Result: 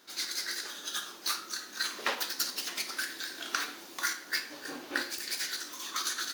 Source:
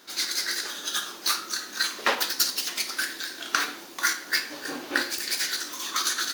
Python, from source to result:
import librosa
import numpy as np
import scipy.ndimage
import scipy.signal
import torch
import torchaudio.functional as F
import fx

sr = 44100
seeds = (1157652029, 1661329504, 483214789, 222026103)

y = fx.band_squash(x, sr, depth_pct=40, at=(1.85, 4.11))
y = F.gain(torch.from_numpy(y), -7.0).numpy()